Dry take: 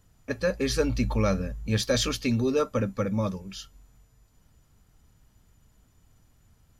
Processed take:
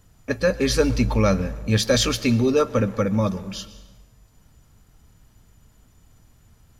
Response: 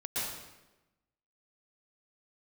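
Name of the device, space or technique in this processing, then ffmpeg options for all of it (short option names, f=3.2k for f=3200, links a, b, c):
saturated reverb return: -filter_complex "[0:a]asplit=2[a][b];[1:a]atrim=start_sample=2205[c];[b][c]afir=irnorm=-1:irlink=0,asoftclip=type=tanh:threshold=-23dB,volume=-17dB[d];[a][d]amix=inputs=2:normalize=0,volume=5.5dB"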